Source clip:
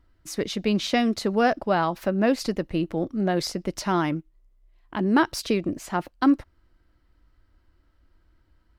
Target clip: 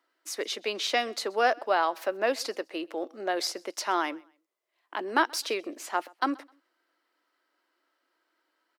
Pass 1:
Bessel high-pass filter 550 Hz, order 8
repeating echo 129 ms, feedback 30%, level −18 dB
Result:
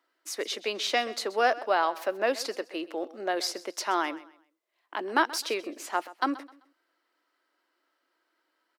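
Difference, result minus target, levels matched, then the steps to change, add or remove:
echo-to-direct +8 dB
change: repeating echo 129 ms, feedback 30%, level −26 dB

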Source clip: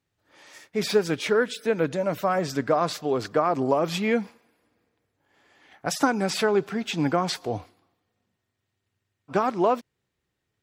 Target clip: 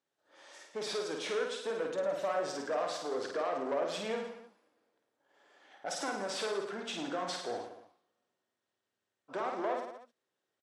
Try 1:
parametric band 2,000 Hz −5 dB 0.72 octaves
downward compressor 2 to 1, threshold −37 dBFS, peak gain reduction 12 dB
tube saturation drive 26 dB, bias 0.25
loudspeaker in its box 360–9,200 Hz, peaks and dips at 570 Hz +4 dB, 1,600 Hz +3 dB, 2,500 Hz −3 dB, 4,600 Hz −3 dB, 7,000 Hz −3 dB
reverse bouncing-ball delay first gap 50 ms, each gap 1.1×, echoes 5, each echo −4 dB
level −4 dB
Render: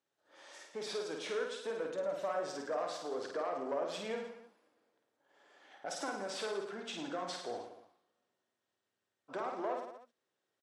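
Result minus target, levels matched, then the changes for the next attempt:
downward compressor: peak gain reduction +5 dB
change: downward compressor 2 to 1, threshold −27 dBFS, peak gain reduction 7 dB

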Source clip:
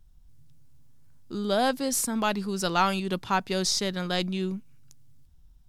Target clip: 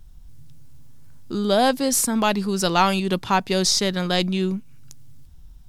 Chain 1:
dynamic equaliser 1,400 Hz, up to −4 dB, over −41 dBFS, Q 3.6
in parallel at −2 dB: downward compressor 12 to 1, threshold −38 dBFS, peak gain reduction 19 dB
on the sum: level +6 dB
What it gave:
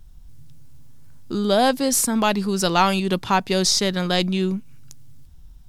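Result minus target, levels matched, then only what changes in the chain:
downward compressor: peak gain reduction −7.5 dB
change: downward compressor 12 to 1, threshold −46 dBFS, peak gain reduction 26.5 dB

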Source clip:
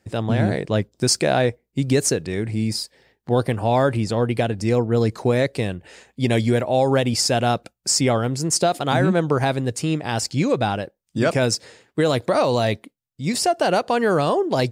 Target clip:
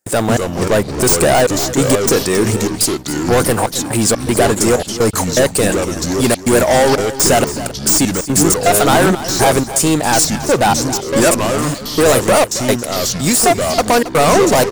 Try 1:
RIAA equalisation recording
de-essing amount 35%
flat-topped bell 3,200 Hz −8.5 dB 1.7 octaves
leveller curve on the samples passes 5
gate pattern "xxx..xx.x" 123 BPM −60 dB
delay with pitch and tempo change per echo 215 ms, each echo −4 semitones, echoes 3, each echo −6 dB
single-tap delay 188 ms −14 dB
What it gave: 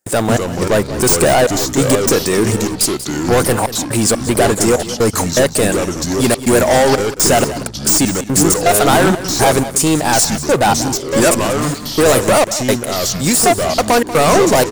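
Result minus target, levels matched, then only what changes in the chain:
echo 84 ms early
change: single-tap delay 272 ms −14 dB

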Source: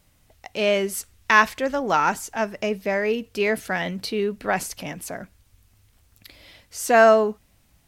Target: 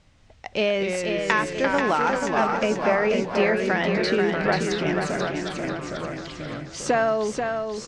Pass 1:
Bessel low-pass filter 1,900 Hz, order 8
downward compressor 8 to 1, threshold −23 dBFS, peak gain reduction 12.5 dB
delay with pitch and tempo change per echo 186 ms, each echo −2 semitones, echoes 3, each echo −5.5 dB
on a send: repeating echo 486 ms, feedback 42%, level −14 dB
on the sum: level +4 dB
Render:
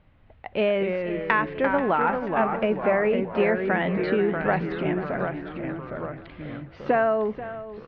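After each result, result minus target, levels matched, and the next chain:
4,000 Hz band −9.0 dB; echo-to-direct −8.5 dB
Bessel low-pass filter 4,900 Hz, order 8
downward compressor 8 to 1, threshold −23 dBFS, peak gain reduction 13.5 dB
delay with pitch and tempo change per echo 186 ms, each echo −2 semitones, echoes 3, each echo −5.5 dB
on a send: repeating echo 486 ms, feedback 42%, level −14 dB
on the sum: level +4 dB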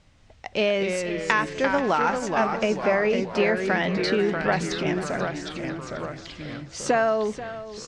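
echo-to-direct −8.5 dB
Bessel low-pass filter 4,900 Hz, order 8
downward compressor 8 to 1, threshold −23 dBFS, peak gain reduction 13.5 dB
delay with pitch and tempo change per echo 186 ms, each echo −2 semitones, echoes 3, each echo −5.5 dB
on a send: repeating echo 486 ms, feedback 42%, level −5.5 dB
on the sum: level +4 dB

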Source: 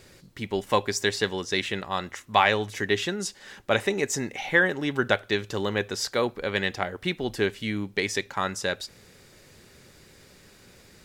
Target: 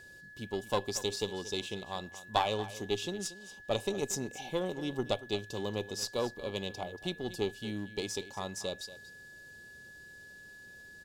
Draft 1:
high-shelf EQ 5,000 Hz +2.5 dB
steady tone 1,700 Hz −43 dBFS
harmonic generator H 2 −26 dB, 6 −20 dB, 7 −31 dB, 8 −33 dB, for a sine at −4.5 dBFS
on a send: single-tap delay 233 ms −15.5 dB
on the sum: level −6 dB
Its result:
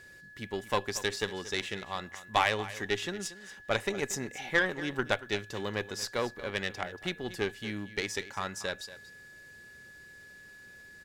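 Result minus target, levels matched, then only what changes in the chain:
2,000 Hz band +7.0 dB
add first: Butterworth band-reject 1,700 Hz, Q 0.91

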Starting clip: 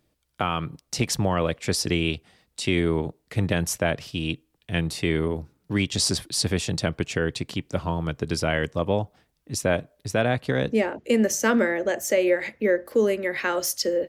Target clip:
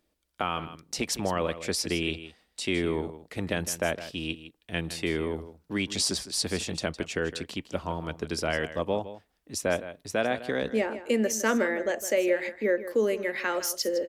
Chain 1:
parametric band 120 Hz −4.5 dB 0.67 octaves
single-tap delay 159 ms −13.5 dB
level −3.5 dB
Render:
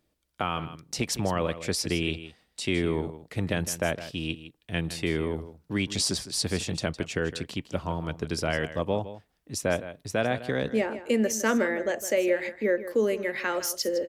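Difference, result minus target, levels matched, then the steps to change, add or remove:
125 Hz band +4.0 dB
change: parametric band 120 Hz −15.5 dB 0.67 octaves

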